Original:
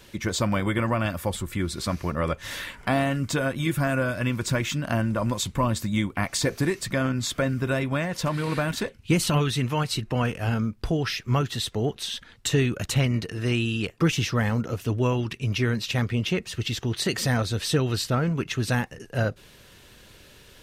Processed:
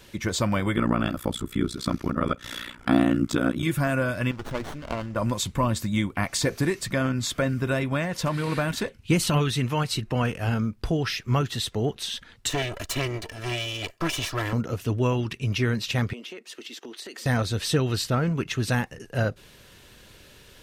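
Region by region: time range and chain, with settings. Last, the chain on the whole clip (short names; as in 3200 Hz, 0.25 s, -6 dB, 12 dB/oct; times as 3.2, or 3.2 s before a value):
0.76–3.63 small resonant body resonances 260/1300/3400 Hz, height 12 dB, ringing for 30 ms + AM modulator 60 Hz, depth 100%
4.31–5.16 rippled Chebyshev low-pass 7300 Hz, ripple 3 dB + bell 170 Hz -8.5 dB 1.3 oct + running maximum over 17 samples
12.5–14.53 minimum comb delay 1.7 ms + low shelf 320 Hz -6 dB + comb 3 ms, depth 44%
16.13–17.26 gate -36 dBFS, range -7 dB + steep high-pass 250 Hz + compressor 8:1, threshold -36 dBFS
whole clip: dry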